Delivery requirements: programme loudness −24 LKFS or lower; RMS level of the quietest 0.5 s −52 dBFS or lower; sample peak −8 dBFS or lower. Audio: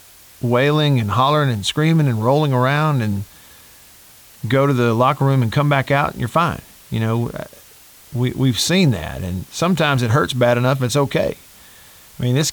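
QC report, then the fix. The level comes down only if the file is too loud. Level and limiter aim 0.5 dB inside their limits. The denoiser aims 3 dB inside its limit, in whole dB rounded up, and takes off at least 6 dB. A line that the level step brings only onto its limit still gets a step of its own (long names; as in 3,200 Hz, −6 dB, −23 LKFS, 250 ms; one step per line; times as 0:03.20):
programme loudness −17.5 LKFS: out of spec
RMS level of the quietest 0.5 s −45 dBFS: out of spec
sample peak −4.5 dBFS: out of spec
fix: broadband denoise 6 dB, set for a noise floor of −45 dBFS
level −7 dB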